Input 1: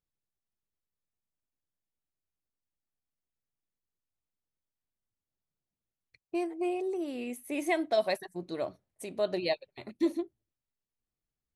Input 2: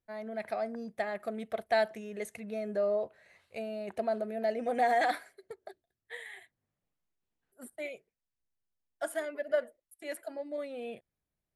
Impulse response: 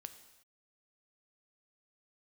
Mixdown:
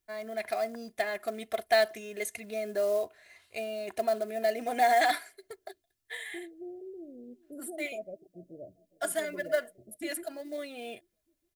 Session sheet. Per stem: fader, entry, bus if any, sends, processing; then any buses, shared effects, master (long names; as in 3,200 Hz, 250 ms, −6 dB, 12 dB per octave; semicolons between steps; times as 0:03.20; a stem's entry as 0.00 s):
−13.0 dB, 0.00 s, no send, echo send −22 dB, Butterworth low-pass 670 Hz 96 dB per octave; low-shelf EQ 160 Hz +10.5 dB
−1.0 dB, 0.00 s, no send, no echo send, comb filter 2.9 ms, depth 54%; floating-point word with a short mantissa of 4 bits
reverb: not used
echo: repeating echo 417 ms, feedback 42%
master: high-shelf EQ 2,000 Hz +10.5 dB